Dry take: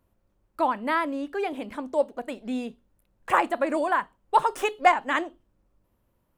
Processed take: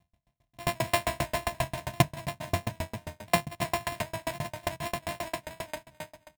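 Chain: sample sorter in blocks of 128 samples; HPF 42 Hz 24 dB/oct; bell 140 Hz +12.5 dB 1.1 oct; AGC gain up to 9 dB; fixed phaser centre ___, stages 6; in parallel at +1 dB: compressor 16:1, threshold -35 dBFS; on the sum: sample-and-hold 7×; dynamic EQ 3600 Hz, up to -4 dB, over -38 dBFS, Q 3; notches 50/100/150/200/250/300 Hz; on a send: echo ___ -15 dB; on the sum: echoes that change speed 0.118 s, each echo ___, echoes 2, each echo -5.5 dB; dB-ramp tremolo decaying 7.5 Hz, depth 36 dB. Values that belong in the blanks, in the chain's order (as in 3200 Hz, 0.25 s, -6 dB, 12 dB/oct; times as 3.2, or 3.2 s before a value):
1400 Hz, 0.472 s, -1 st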